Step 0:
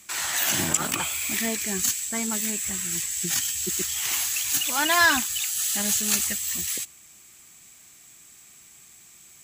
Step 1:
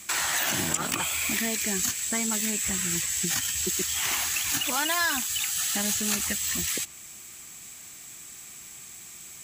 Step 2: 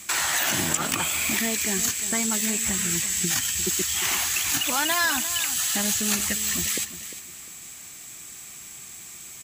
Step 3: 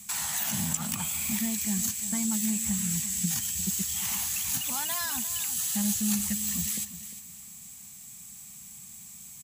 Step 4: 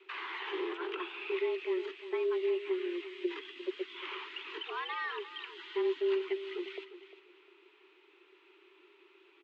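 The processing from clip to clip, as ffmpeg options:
ffmpeg -i in.wav -filter_complex "[0:a]acrossover=split=2000|6400[link_01][link_02][link_03];[link_01]acompressor=threshold=-37dB:ratio=4[link_04];[link_02]acompressor=threshold=-39dB:ratio=4[link_05];[link_03]acompressor=threshold=-38dB:ratio=4[link_06];[link_04][link_05][link_06]amix=inputs=3:normalize=0,volume=6.5dB" out.wav
ffmpeg -i in.wav -af "aecho=1:1:351|702|1053:0.224|0.0649|0.0188,volume=2.5dB" out.wav
ffmpeg -i in.wav -af "firequalizer=gain_entry='entry(110,0);entry(210,6);entry(320,-20);entry(840,-5);entry(1400,-12);entry(3400,-7);entry(10000,1)':delay=0.05:min_phase=1,volume=-3dB" out.wav
ffmpeg -i in.wav -af "highpass=frequency=180:width_type=q:width=0.5412,highpass=frequency=180:width_type=q:width=1.307,lowpass=frequency=2900:width_type=q:width=0.5176,lowpass=frequency=2900:width_type=q:width=0.7071,lowpass=frequency=2900:width_type=q:width=1.932,afreqshift=180" out.wav

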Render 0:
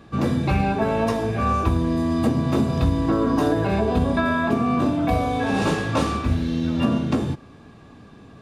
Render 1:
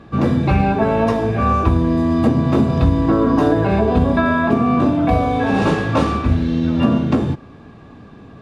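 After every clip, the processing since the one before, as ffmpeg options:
ffmpeg -i in.wav -af "lowpass=frequency=2600:poles=1,volume=5.5dB" out.wav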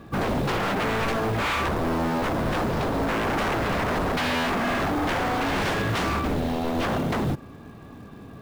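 ffmpeg -i in.wav -af "aeval=exprs='0.133*(abs(mod(val(0)/0.133+3,4)-2)-1)':channel_layout=same,acrusher=bits=6:mode=log:mix=0:aa=0.000001,volume=-2.5dB" out.wav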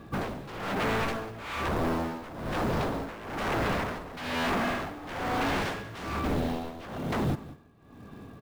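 ffmpeg -i in.wav -af "tremolo=f=1.1:d=0.83,aecho=1:1:191:0.133,volume=-2.5dB" out.wav

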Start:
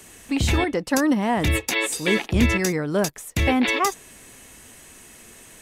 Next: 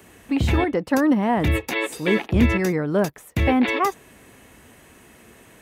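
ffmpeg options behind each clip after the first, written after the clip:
ffmpeg -i in.wav -af "highpass=50,equalizer=frequency=7400:width=0.47:gain=-13,volume=2dB" out.wav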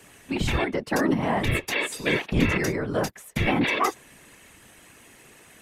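ffmpeg -i in.wav -af "lowpass=12000,afftfilt=real='hypot(re,im)*cos(2*PI*random(0))':imag='hypot(re,im)*sin(2*PI*random(1))':win_size=512:overlap=0.75,tiltshelf=frequency=1400:gain=-4,volume=4.5dB" out.wav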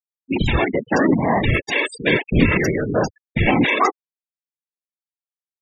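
ffmpeg -i in.wav -af "afftfilt=real='re*gte(hypot(re,im),0.0501)':imag='im*gte(hypot(re,im),0.0501)':win_size=1024:overlap=0.75,volume=6.5dB" out.wav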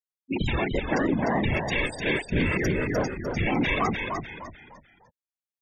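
ffmpeg -i in.wav -filter_complex "[0:a]alimiter=limit=-9.5dB:level=0:latency=1:release=27,asplit=5[link_01][link_02][link_03][link_04][link_05];[link_02]adelay=300,afreqshift=-64,volume=-5dB[link_06];[link_03]adelay=600,afreqshift=-128,volume=-14.1dB[link_07];[link_04]adelay=900,afreqshift=-192,volume=-23.2dB[link_08];[link_05]adelay=1200,afreqshift=-256,volume=-32.4dB[link_09];[link_01][link_06][link_07][link_08][link_09]amix=inputs=5:normalize=0,volume=-7dB" out.wav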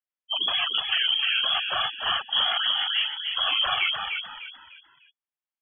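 ffmpeg -i in.wav -af "lowpass=frequency=2900:width_type=q:width=0.5098,lowpass=frequency=2900:width_type=q:width=0.6013,lowpass=frequency=2900:width_type=q:width=0.9,lowpass=frequency=2900:width_type=q:width=2.563,afreqshift=-3400" out.wav

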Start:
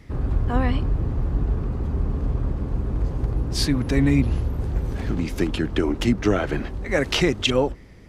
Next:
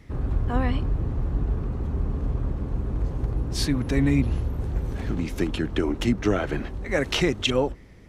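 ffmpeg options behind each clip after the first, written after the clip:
ffmpeg -i in.wav -af "bandreject=frequency=4800:width=18,volume=-2.5dB" out.wav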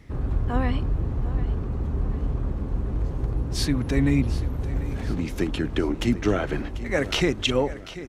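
ffmpeg -i in.wav -af "aecho=1:1:742|1484|2226|2968:0.178|0.0818|0.0376|0.0173" out.wav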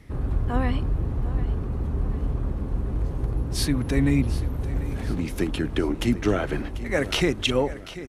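ffmpeg -i in.wav -filter_complex "[0:a]acrossover=split=1500[link_01][link_02];[link_02]aexciter=amount=2.8:drive=1.2:freq=9100[link_03];[link_01][link_03]amix=inputs=2:normalize=0,aresample=32000,aresample=44100" out.wav

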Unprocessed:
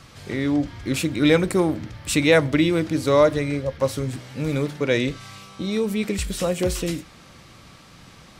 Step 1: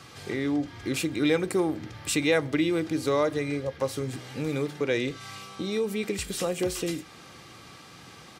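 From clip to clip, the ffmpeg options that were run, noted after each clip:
ffmpeg -i in.wav -af "highpass=120,aecho=1:1:2.5:0.33,acompressor=threshold=-33dB:ratio=1.5" out.wav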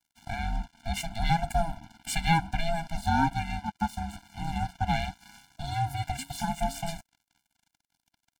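ffmpeg -i in.wav -af "aeval=exprs='val(0)*sin(2*PI*330*n/s)':channel_layout=same,aeval=exprs='sgn(val(0))*max(abs(val(0))-0.00891,0)':channel_layout=same,afftfilt=real='re*eq(mod(floor(b*sr/1024/340),2),0)':imag='im*eq(mod(floor(b*sr/1024/340),2),0)':win_size=1024:overlap=0.75,volume=4.5dB" out.wav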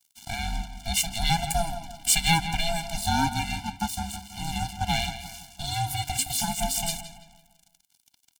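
ffmpeg -i in.wav -filter_complex "[0:a]aexciter=amount=3.8:drive=4.2:freq=2500,asplit=2[link_01][link_02];[link_02]adelay=167,lowpass=frequency=3900:poles=1,volume=-10.5dB,asplit=2[link_03][link_04];[link_04]adelay=167,lowpass=frequency=3900:poles=1,volume=0.43,asplit=2[link_05][link_06];[link_06]adelay=167,lowpass=frequency=3900:poles=1,volume=0.43,asplit=2[link_07][link_08];[link_08]adelay=167,lowpass=frequency=3900:poles=1,volume=0.43,asplit=2[link_09][link_10];[link_10]adelay=167,lowpass=frequency=3900:poles=1,volume=0.43[link_11];[link_03][link_05][link_07][link_09][link_11]amix=inputs=5:normalize=0[link_12];[link_01][link_12]amix=inputs=2:normalize=0" out.wav

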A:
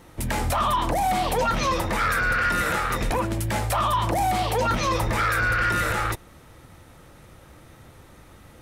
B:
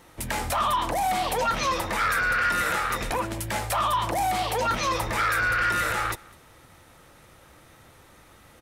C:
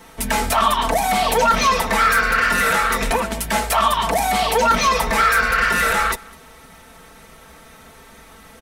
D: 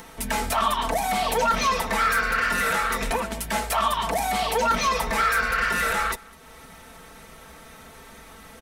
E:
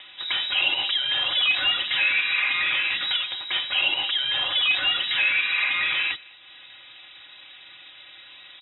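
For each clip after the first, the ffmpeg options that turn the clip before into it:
ffmpeg -i in.wav -af "lowshelf=frequency=430:gain=-8,aecho=1:1:203:0.0631" out.wav
ffmpeg -i in.wav -filter_complex "[0:a]aecho=1:1:4.5:0.84,acrossover=split=540|1300[link_01][link_02][link_03];[link_03]asoftclip=type=hard:threshold=-22dB[link_04];[link_01][link_02][link_04]amix=inputs=3:normalize=0,volume=6.5dB" out.wav
ffmpeg -i in.wav -af "acompressor=mode=upward:threshold=-32dB:ratio=2.5,volume=-6dB" out.wav
ffmpeg -i in.wav -af "lowpass=frequency=3300:width_type=q:width=0.5098,lowpass=frequency=3300:width_type=q:width=0.6013,lowpass=frequency=3300:width_type=q:width=0.9,lowpass=frequency=3300:width_type=q:width=2.563,afreqshift=-3900" out.wav

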